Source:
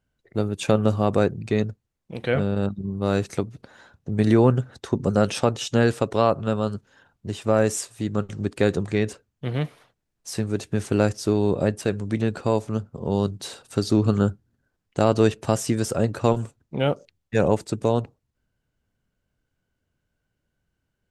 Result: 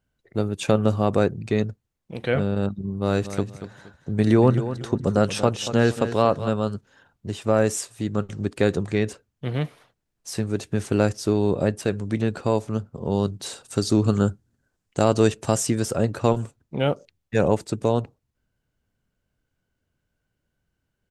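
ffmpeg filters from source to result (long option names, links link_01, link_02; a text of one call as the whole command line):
ffmpeg -i in.wav -filter_complex "[0:a]asplit=3[link_01][link_02][link_03];[link_01]afade=type=out:start_time=3.06:duration=0.02[link_04];[link_02]aecho=1:1:234|468|702:0.251|0.0678|0.0183,afade=type=in:start_time=3.06:duration=0.02,afade=type=out:start_time=6.48:duration=0.02[link_05];[link_03]afade=type=in:start_time=6.48:duration=0.02[link_06];[link_04][link_05][link_06]amix=inputs=3:normalize=0,asettb=1/sr,asplit=3[link_07][link_08][link_09];[link_07]atrim=end=13.464[link_10];[link_08]atrim=start=13.46:end=15.67,asetpts=PTS-STARTPTS,afade=type=in:duration=0.004:curve=qsin,afade=type=out:start_time=2.206:duration=0.004:curve=qsin,equalizer=frequency=7600:width_type=o:width=0.99:gain=6.5[link_11];[link_09]atrim=start=15.666[link_12];[link_10][link_11]acrossfade=duration=0.004:curve1=hsin:curve2=qsin[link_13];[link_13][link_12]acrossfade=duration=0.004:curve1=qsin:curve2=hsin" out.wav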